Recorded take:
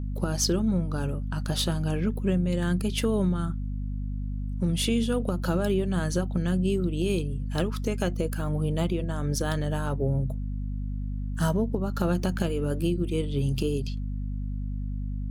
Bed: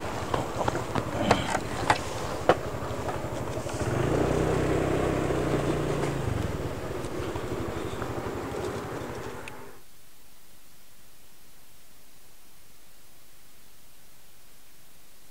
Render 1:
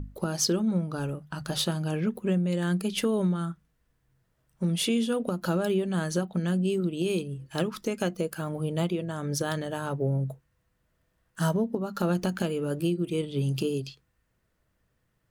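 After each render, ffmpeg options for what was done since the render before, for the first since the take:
-af "bandreject=f=50:t=h:w=6,bandreject=f=100:t=h:w=6,bandreject=f=150:t=h:w=6,bandreject=f=200:t=h:w=6,bandreject=f=250:t=h:w=6"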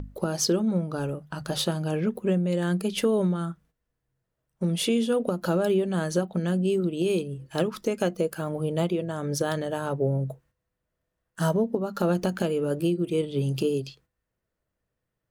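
-af "agate=range=-10dB:threshold=-57dB:ratio=16:detection=peak,equalizer=f=520:w=1:g=5"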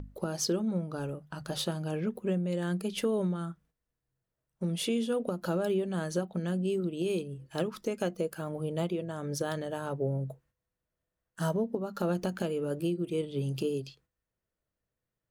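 -af "volume=-6dB"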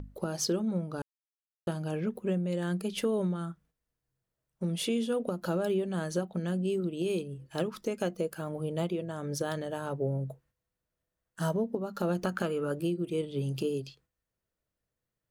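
-filter_complex "[0:a]asettb=1/sr,asplit=3[a][b][c];[a]atrim=end=12.244[d];[b]atrim=start=12.24:end=12.72,asetpts=PTS-STARTPTS,afade=t=in:d=0.004:c=qsin,afade=t=out:st=0.476:d=0.004:c=qsin,equalizer=f=1.3k:w=2:g=11[e];[c]atrim=start=12.716[f];[d][e]acrossfade=d=0.004:c1=hsin:c2=qsin[g];[g][f]acrossfade=d=0.004:c1=qsin:c2=hsin,asplit=3[h][i][j];[h]atrim=end=1.02,asetpts=PTS-STARTPTS,afade=t=out:st=1.016:d=0.004:c=hsin[k];[i]atrim=start=1.02:end=1.67,asetpts=PTS-STARTPTS,volume=0[l];[j]atrim=start=1.67,asetpts=PTS-STARTPTS,afade=t=in:d=0.004:c=hsin[m];[k][l][m]concat=n=3:v=0:a=1"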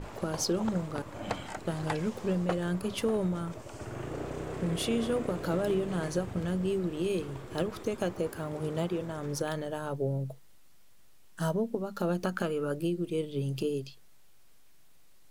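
-filter_complex "[1:a]volume=-12dB[a];[0:a][a]amix=inputs=2:normalize=0"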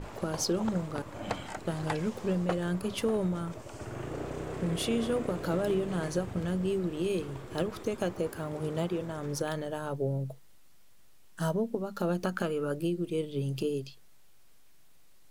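-af anull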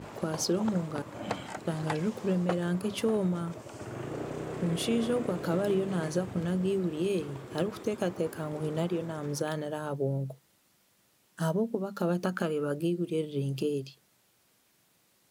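-af "highpass=140,lowshelf=f=190:g=5.5"

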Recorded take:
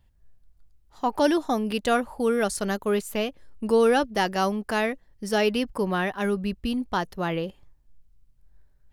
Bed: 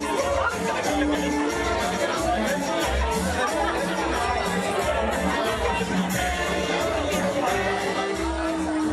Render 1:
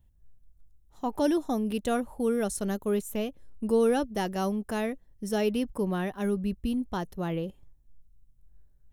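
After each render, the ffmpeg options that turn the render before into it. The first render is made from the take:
-af "equalizer=f=1.8k:w=0.34:g=-10.5,bandreject=f=4.7k:w=5.5"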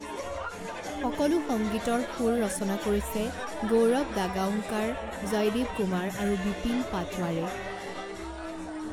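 -filter_complex "[1:a]volume=-12dB[a];[0:a][a]amix=inputs=2:normalize=0"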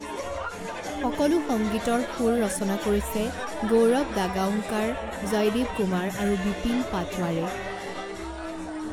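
-af "volume=3dB"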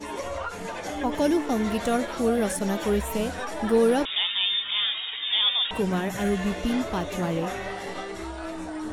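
-filter_complex "[0:a]asettb=1/sr,asplit=3[a][b][c];[a]atrim=end=4.054[d];[b]atrim=start=4.05:end=5.71,asetpts=PTS-STARTPTS,afade=t=in:d=0.004:c=qsin,afade=t=out:st=1.656:d=0.004:c=qsin,lowpass=f=3.2k:t=q:w=0.5098,lowpass=f=3.2k:t=q:w=0.6013,lowpass=f=3.2k:t=q:w=0.9,lowpass=f=3.2k:t=q:w=2.563,afreqshift=-3800[e];[c]atrim=start=5.706[f];[d][e]acrossfade=d=0.004:c1=hsin:c2=qsin[g];[g][f]acrossfade=d=0.004:c1=qsin:c2=hsin"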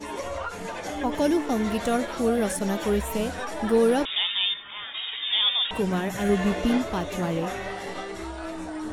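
-filter_complex "[0:a]asplit=3[a][b][c];[a]afade=t=out:st=4.53:d=0.02[d];[b]lowpass=1.6k,afade=t=in:st=4.53:d=0.02,afade=t=out:st=4.93:d=0.02[e];[c]afade=t=in:st=4.93:d=0.02[f];[d][e][f]amix=inputs=3:normalize=0,asettb=1/sr,asplit=3[g][h][i];[g]atrim=end=6.294[j];[h]atrim=start=6.29:end=6.78,asetpts=PTS-STARTPTS,afade=t=in:d=0.004:c=qsin,afade=t=out:st=0.486:d=0.004:c=qsin,equalizer=f=580:w=0.3:g=4.5[k];[i]atrim=start=6.776[l];[j][k]acrossfade=d=0.004:c1=hsin:c2=qsin[m];[m][l]acrossfade=d=0.004:c1=qsin:c2=hsin"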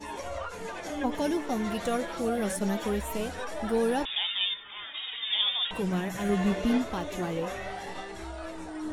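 -af "flanger=delay=1.1:depth=4.9:regen=52:speed=0.25:shape=sinusoidal"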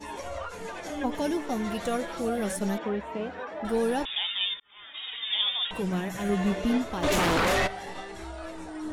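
-filter_complex "[0:a]asettb=1/sr,asplit=3[a][b][c];[a]atrim=end=2.784[d];[b]atrim=start=2.78:end=3.65,asetpts=PTS-STARTPTS,afade=t=in:d=0.004:c=qsin,afade=t=out:st=0.866:d=0.004:c=qsin,highpass=140,lowpass=2.3k[e];[c]atrim=start=3.646[f];[d][e]acrossfade=d=0.004:c1=hsin:c2=qsin[g];[g][f]acrossfade=d=0.004:c1=qsin:c2=hsin,asplit=3[h][i][j];[h]afade=t=out:st=7.02:d=0.02[k];[i]aeval=exprs='0.0944*sin(PI/2*4.47*val(0)/0.0944)':c=same,afade=t=in:st=7.02:d=0.02,afade=t=out:st=7.66:d=0.02[l];[j]afade=t=in:st=7.66:d=0.02[m];[k][l][m]amix=inputs=3:normalize=0,asplit=2[n][o];[n]atrim=end=4.6,asetpts=PTS-STARTPTS,afade=t=out:st=4.596:d=0.004:c=hsin[p];[o]atrim=start=4.6,asetpts=PTS-STARTPTS,afade=t=in:d=0.48[q];[p][q]concat=n=2:v=0:a=1"

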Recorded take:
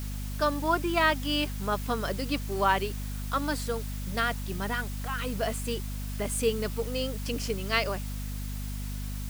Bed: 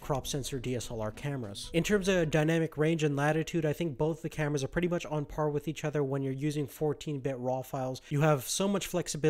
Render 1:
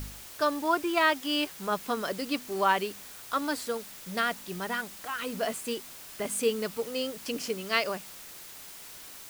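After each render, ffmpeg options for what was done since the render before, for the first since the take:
-af "bandreject=f=50:t=h:w=4,bandreject=f=100:t=h:w=4,bandreject=f=150:t=h:w=4,bandreject=f=200:t=h:w=4,bandreject=f=250:t=h:w=4"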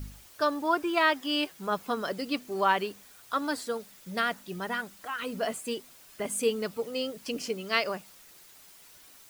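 -af "afftdn=nr=9:nf=-46"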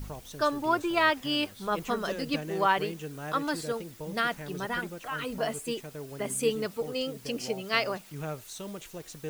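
-filter_complex "[1:a]volume=-10.5dB[a];[0:a][a]amix=inputs=2:normalize=0"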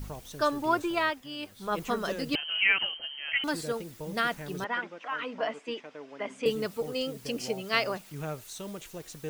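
-filter_complex "[0:a]asettb=1/sr,asplit=3[a][b][c];[a]atrim=end=2.354[d];[b]atrim=start=2.35:end=3.44,asetpts=PTS-STARTPTS,afade=t=in:d=0.004:c=qsin,afade=t=out:st=1.086:d=0.004:c=qsin,lowpass=f=2.8k:t=q:w=0.5098,lowpass=f=2.8k:t=q:w=0.6013,lowpass=f=2.8k:t=q:w=0.9,lowpass=f=2.8k:t=q:w=2.563,afreqshift=-3300[e];[c]atrim=start=3.436[f];[d][e]acrossfade=d=0.004:c1=hsin:c2=qsin[g];[g][f]acrossfade=d=0.004:c1=qsin:c2=hsin,asettb=1/sr,asplit=3[h][i][j];[h]atrim=end=4.644[k];[i]atrim=start=4.64:end=6.46,asetpts=PTS-STARTPTS,afade=t=in:d=0.004:c=qsin,afade=t=out:st=1.816:d=0.004:c=qsin,highpass=f=250:w=0.5412,highpass=f=250:w=1.3066,equalizer=f=380:t=q:w=4:g=-8,equalizer=f=1k:t=q:w=4:g=3,equalizer=f=2.1k:t=q:w=4:g=3,equalizer=f=4.2k:t=q:w=4:g=-9,lowpass=f=4.7k:w=0.5412,lowpass=f=4.7k:w=1.3066[l];[j]atrim=start=6.456[m];[k][l]acrossfade=d=0.004:c1=hsin:c2=qsin[n];[n][m]acrossfade=d=0.004:c1=qsin:c2=hsin,asplit=3[o][p][q];[o]atrim=end=1.25,asetpts=PTS-STARTPTS,afade=t=out:st=0.82:d=0.43:silence=0.281838[r];[p]atrim=start=1.25:end=1.37,asetpts=PTS-STARTPTS,volume=-11dB[s];[q]atrim=start=1.37,asetpts=PTS-STARTPTS,afade=t=in:d=0.43:silence=0.281838[t];[r][s][t]concat=n=3:v=0:a=1"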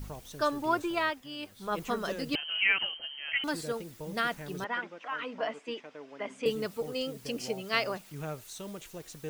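-af "volume=-2dB"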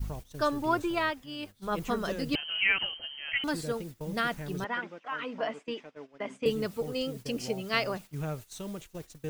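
-af "agate=range=-14dB:threshold=-45dB:ratio=16:detection=peak,lowshelf=f=170:g=10"

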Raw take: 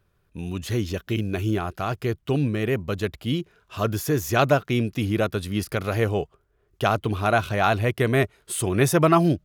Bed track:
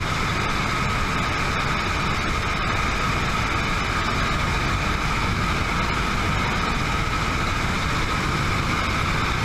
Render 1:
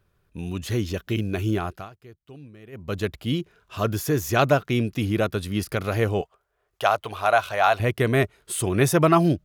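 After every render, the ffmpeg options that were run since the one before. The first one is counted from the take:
-filter_complex "[0:a]asettb=1/sr,asplit=3[a][b][c];[a]atrim=end=6.214[d];[b]atrim=start=6.21:end=7.8,asetpts=PTS-STARTPTS,afade=t=in:d=0.004:c=qsin,afade=t=out:st=1.586:d=0.004:c=qsin,lowshelf=f=430:t=q:w=1.5:g=-13[e];[c]atrim=start=7.796[f];[d][e]acrossfade=d=0.004:c1=hsin:c2=qsin[g];[g][f]acrossfade=d=0.004:c1=qsin:c2=hsin,asplit=3[h][i][j];[h]atrim=end=1.9,asetpts=PTS-STARTPTS,afade=t=out:st=1.66:d=0.24:silence=0.0891251[k];[i]atrim=start=1.9:end=2.72,asetpts=PTS-STARTPTS,volume=-21dB[l];[j]atrim=start=2.72,asetpts=PTS-STARTPTS,afade=t=in:d=0.24:silence=0.0891251[m];[k][l][m]concat=n=3:v=0:a=1"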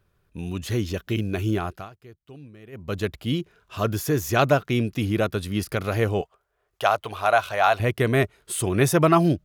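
-af anull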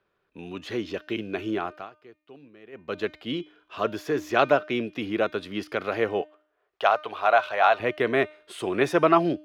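-filter_complex "[0:a]acrossover=split=240 4400:gain=0.0891 1 0.0891[a][b][c];[a][b][c]amix=inputs=3:normalize=0,bandreject=f=304.8:t=h:w=4,bandreject=f=609.6:t=h:w=4,bandreject=f=914.4:t=h:w=4,bandreject=f=1.2192k:t=h:w=4,bandreject=f=1.524k:t=h:w=4,bandreject=f=1.8288k:t=h:w=4,bandreject=f=2.1336k:t=h:w=4,bandreject=f=2.4384k:t=h:w=4,bandreject=f=2.7432k:t=h:w=4,bandreject=f=3.048k:t=h:w=4,bandreject=f=3.3528k:t=h:w=4,bandreject=f=3.6576k:t=h:w=4,bandreject=f=3.9624k:t=h:w=4,bandreject=f=4.2672k:t=h:w=4,bandreject=f=4.572k:t=h:w=4,bandreject=f=4.8768k:t=h:w=4,bandreject=f=5.1816k:t=h:w=4,bandreject=f=5.4864k:t=h:w=4,bandreject=f=5.7912k:t=h:w=4,bandreject=f=6.096k:t=h:w=4,bandreject=f=6.4008k:t=h:w=4,bandreject=f=6.7056k:t=h:w=4,bandreject=f=7.0104k:t=h:w=4,bandreject=f=7.3152k:t=h:w=4,bandreject=f=7.62k:t=h:w=4,bandreject=f=7.9248k:t=h:w=4,bandreject=f=8.2296k:t=h:w=4,bandreject=f=8.5344k:t=h:w=4,bandreject=f=8.8392k:t=h:w=4,bandreject=f=9.144k:t=h:w=4,bandreject=f=9.4488k:t=h:w=4,bandreject=f=9.7536k:t=h:w=4,bandreject=f=10.0584k:t=h:w=4,bandreject=f=10.3632k:t=h:w=4,bandreject=f=10.668k:t=h:w=4,bandreject=f=10.9728k:t=h:w=4,bandreject=f=11.2776k:t=h:w=4"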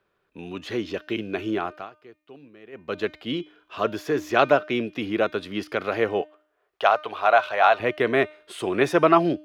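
-af "volume=2dB"

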